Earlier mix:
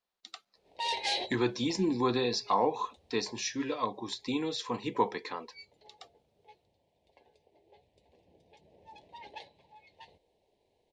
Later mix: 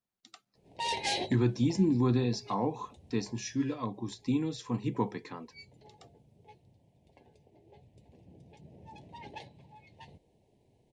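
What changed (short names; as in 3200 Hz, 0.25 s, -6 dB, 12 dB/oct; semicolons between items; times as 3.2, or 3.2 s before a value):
background +7.0 dB; master: add ten-band EQ 125 Hz +11 dB, 250 Hz +4 dB, 500 Hz -6 dB, 1000 Hz -5 dB, 2000 Hz -4 dB, 4000 Hz -9 dB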